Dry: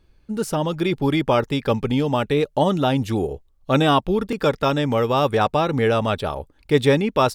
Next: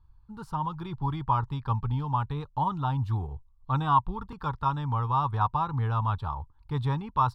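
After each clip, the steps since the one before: FFT filter 120 Hz 0 dB, 210 Hz -16 dB, 600 Hz -26 dB, 970 Hz +3 dB, 2.1 kHz -24 dB, 4.2 kHz -16 dB, 6.1 kHz -26 dB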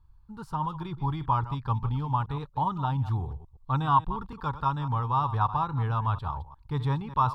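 chunks repeated in reverse 119 ms, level -13.5 dB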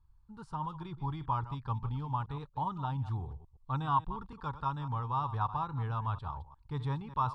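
resampled via 22.05 kHz; trim -7 dB

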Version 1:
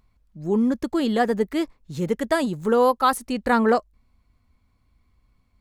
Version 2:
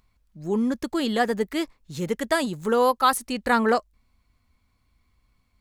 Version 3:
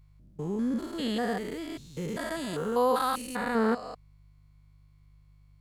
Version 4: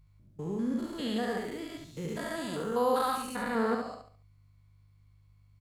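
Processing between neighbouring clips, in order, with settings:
tilt shelf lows -3.5 dB, about 1.2 kHz
spectrogram pixelated in time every 200 ms; mains buzz 50 Hz, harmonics 3, -56 dBFS -4 dB/octave; trim -2 dB
feedback delay 70 ms, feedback 35%, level -5 dB; trim -3.5 dB

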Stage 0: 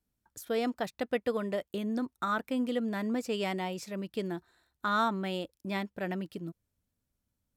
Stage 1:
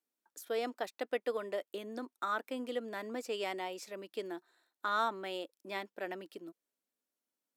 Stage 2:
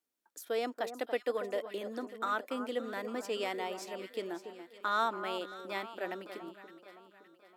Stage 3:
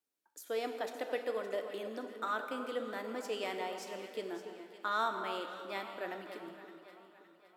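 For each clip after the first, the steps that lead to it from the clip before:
high-pass 300 Hz 24 dB/octave; trim -3.5 dB
echo whose repeats swap between lows and highs 283 ms, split 1.4 kHz, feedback 67%, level -9.5 dB; trim +1.5 dB
reverberation RT60 2.2 s, pre-delay 3 ms, DRR 5.5 dB; trim -3 dB

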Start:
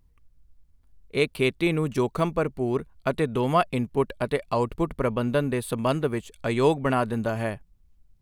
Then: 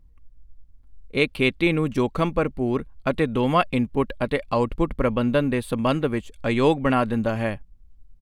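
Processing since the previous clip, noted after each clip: tilt EQ -1.5 dB/octave; comb 3.7 ms, depth 30%; dynamic bell 2.7 kHz, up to +7 dB, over -42 dBFS, Q 0.75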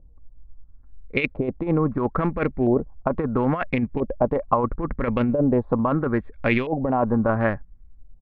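local Wiener filter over 15 samples; compressor with a negative ratio -22 dBFS, ratio -0.5; LFO low-pass saw up 0.75 Hz 600–2800 Hz; trim +1 dB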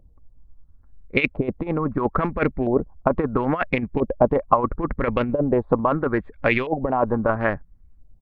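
harmonic-percussive split percussive +9 dB; trim -5 dB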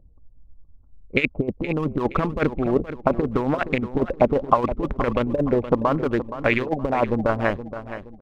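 local Wiener filter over 25 samples; on a send: feedback delay 471 ms, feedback 36%, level -12 dB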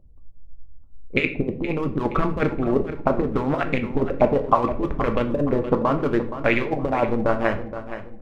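reverberation RT60 0.50 s, pre-delay 7 ms, DRR 5.5 dB; trim -1 dB

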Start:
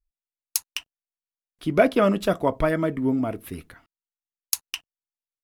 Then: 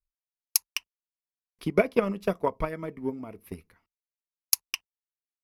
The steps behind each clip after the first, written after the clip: rippled EQ curve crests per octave 0.84, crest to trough 7 dB; transient shaper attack +12 dB, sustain -2 dB; trim -12.5 dB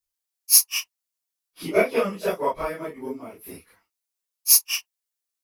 phase randomisation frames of 100 ms; tone controls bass -11 dB, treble +8 dB; trim +4 dB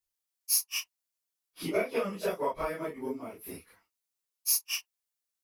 compression 2.5:1, threshold -26 dBFS, peak gain reduction 11 dB; trim -2.5 dB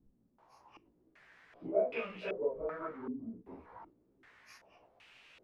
jump at every zero crossing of -37.5 dBFS; chorus 1.7 Hz, delay 15 ms, depth 2.7 ms; step-sequenced low-pass 2.6 Hz 230–2600 Hz; trim -8.5 dB

